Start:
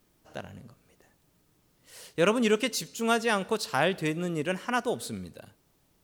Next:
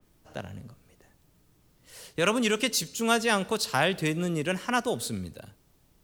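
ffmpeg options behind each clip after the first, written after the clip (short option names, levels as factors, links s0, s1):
-filter_complex "[0:a]lowshelf=f=110:g=9,acrossover=split=100|640|6500[s0][s1][s2][s3];[s1]alimiter=limit=0.0708:level=0:latency=1[s4];[s0][s4][s2][s3]amix=inputs=4:normalize=0,adynamicequalizer=threshold=0.00708:dfrequency=2700:dqfactor=0.7:tfrequency=2700:tqfactor=0.7:attack=5:release=100:ratio=0.375:range=2:mode=boostabove:tftype=highshelf,volume=1.12"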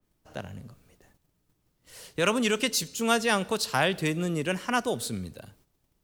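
-af "agate=range=0.316:threshold=0.001:ratio=16:detection=peak"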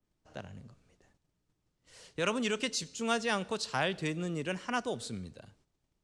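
-af "lowpass=f=8300:w=0.5412,lowpass=f=8300:w=1.3066,volume=0.473"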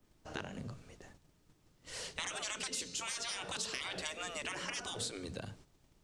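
-af "bandreject=f=60:t=h:w=6,bandreject=f=120:t=h:w=6,bandreject=f=180:t=h:w=6,afftfilt=real='re*lt(hypot(re,im),0.0316)':imag='im*lt(hypot(re,im),0.0316)':win_size=1024:overlap=0.75,acompressor=threshold=0.00316:ratio=3,volume=3.76"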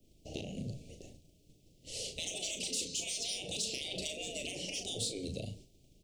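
-filter_complex "[0:a]asplit=2[s0][s1];[s1]asoftclip=type=tanh:threshold=0.0158,volume=0.531[s2];[s0][s2]amix=inputs=2:normalize=0,asuperstop=centerf=1300:order=8:qfactor=0.67,asplit=2[s3][s4];[s4]adelay=37,volume=0.447[s5];[s3][s5]amix=inputs=2:normalize=0"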